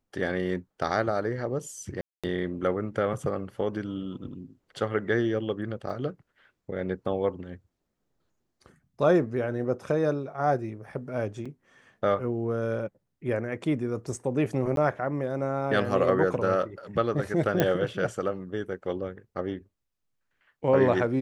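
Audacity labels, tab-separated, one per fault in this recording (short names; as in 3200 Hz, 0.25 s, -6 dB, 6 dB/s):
2.010000	2.240000	gap 0.226 s
5.900000	5.900000	gap 2.2 ms
11.450000	11.460000	gap 5.5 ms
14.760000	14.770000	gap 12 ms
17.600000	17.600000	pop -9 dBFS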